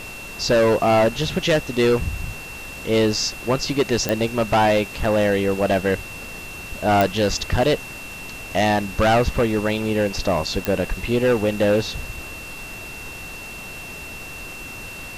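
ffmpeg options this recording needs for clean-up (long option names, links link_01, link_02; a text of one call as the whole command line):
ffmpeg -i in.wav -af "adeclick=threshold=4,bandreject=frequency=2700:width=30,afftdn=noise_reduction=30:noise_floor=-35" out.wav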